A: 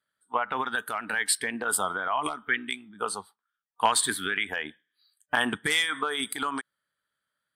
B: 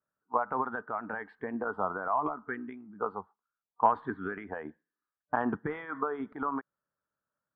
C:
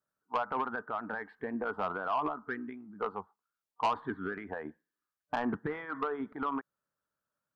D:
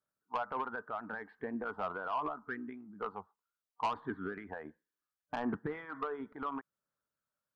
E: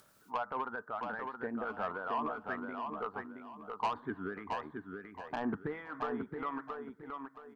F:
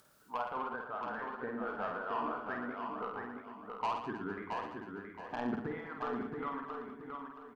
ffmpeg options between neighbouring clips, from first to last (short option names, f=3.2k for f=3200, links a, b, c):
-af "lowpass=f=1.2k:w=0.5412,lowpass=f=1.2k:w=1.3066"
-af "asoftclip=type=tanh:threshold=-23dB"
-af "aphaser=in_gain=1:out_gain=1:delay=2.1:decay=0.24:speed=0.72:type=sinusoidal,volume=-4.5dB"
-af "aecho=1:1:673|1346|2019|2692:0.562|0.152|0.041|0.0111,acompressor=mode=upward:threshold=-45dB:ratio=2.5"
-af "aecho=1:1:50|115|199.5|309.4|452.2:0.631|0.398|0.251|0.158|0.1,volume=-2.5dB"